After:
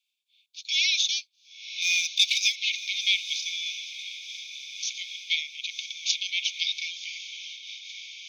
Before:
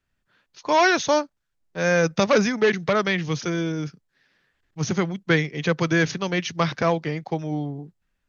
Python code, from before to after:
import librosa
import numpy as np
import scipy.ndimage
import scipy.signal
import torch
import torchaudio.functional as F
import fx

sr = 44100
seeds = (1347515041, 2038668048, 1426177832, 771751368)

y = fx.peak_eq(x, sr, hz=3600.0, db=11.5, octaves=0.21)
y = fx.leveller(y, sr, passes=1, at=(1.82, 2.56))
y = fx.over_compress(y, sr, threshold_db=-25.0, ratio=-0.5, at=(5.7, 6.31))
y = scipy.signal.sosfilt(scipy.signal.cheby1(10, 1.0, 2200.0, 'highpass', fs=sr, output='sos'), y)
y = fx.echo_diffused(y, sr, ms=1032, feedback_pct=60, wet_db=-11.0)
y = fx.am_noise(y, sr, seeds[0], hz=5.7, depth_pct=60)
y = F.gain(torch.from_numpy(y), 5.0).numpy()